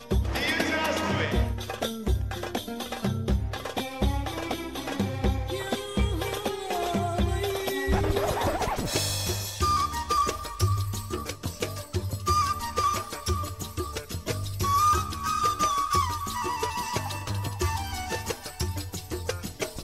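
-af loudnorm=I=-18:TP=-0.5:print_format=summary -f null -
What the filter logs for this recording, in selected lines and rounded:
Input Integrated:    -28.7 LUFS
Input True Peak:     -11.5 dBTP
Input LRA:             5.0 LU
Input Threshold:     -38.7 LUFS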